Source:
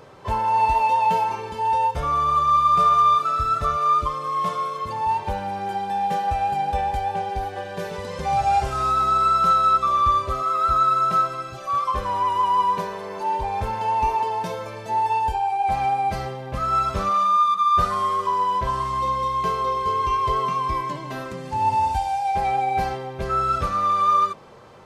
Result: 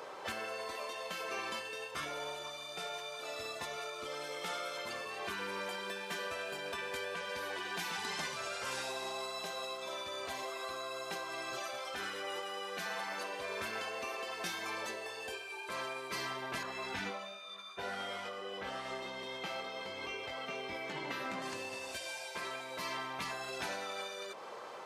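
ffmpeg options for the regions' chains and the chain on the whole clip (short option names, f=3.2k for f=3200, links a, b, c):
-filter_complex "[0:a]asettb=1/sr,asplit=3[a][b][c];[a]atrim=end=16.634[d];[b]atrim=start=16.63:end=21.42,asetpts=PTS-STARTPTS,afade=t=in:d=0.004:c=qsin,afade=t=out:st=4.786:d=0.004:c=qsin,bass=f=250:g=3,treble=f=4k:g=-11,asplit=2[e][f];[f]adelay=20,volume=-4dB[g];[e][g]amix=inputs=2:normalize=0,atrim=end_sample=211239[h];[c]atrim=start=21.416[i];[d][h]acrossfade=d=0.004:c1=hsin:c2=qsin[j];[j][i]acrossfade=d=0.004:c1=qsin:c2=hsin,highpass=470,acompressor=threshold=-26dB:ratio=3,afftfilt=real='re*lt(hypot(re,im),0.0562)':imag='im*lt(hypot(re,im),0.0562)':win_size=1024:overlap=0.75,volume=2dB"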